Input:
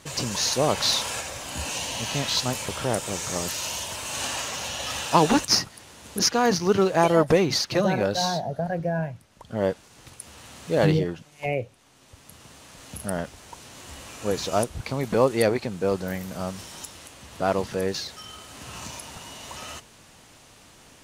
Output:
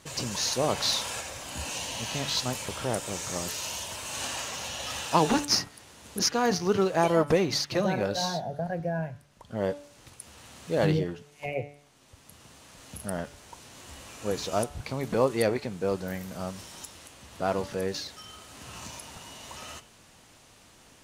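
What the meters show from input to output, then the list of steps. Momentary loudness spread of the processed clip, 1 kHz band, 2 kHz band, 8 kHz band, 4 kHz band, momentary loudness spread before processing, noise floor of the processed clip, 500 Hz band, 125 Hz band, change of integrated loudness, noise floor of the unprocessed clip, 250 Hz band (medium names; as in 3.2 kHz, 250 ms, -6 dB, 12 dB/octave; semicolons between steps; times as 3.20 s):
20 LU, -4.5 dB, -4.0 dB, -4.0 dB, -4.0 dB, 20 LU, -56 dBFS, -4.0 dB, -4.5 dB, -4.0 dB, -53 dBFS, -4.0 dB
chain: de-hum 144.6 Hz, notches 25; trim -4 dB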